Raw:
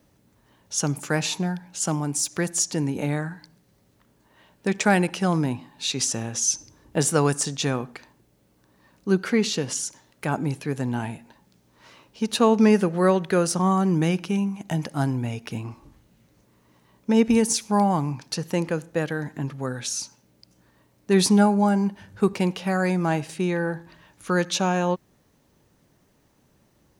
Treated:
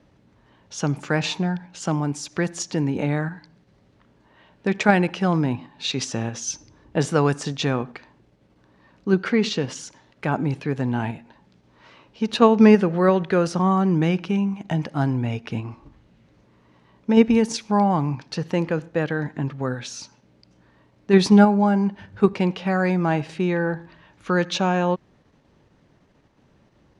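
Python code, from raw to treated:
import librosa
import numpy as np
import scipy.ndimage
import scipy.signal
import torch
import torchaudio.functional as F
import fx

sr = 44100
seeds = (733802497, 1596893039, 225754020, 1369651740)

p1 = scipy.signal.sosfilt(scipy.signal.butter(2, 3800.0, 'lowpass', fs=sr, output='sos'), x)
p2 = fx.level_steps(p1, sr, step_db=16)
y = p1 + (p2 * 10.0 ** (-2.0 / 20.0))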